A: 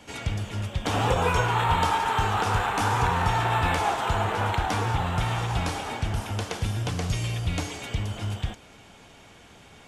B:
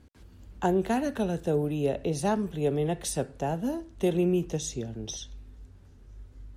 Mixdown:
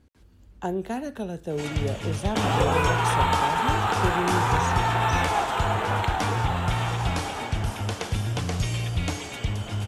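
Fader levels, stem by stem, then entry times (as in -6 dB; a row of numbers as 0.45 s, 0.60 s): +1.0 dB, -3.5 dB; 1.50 s, 0.00 s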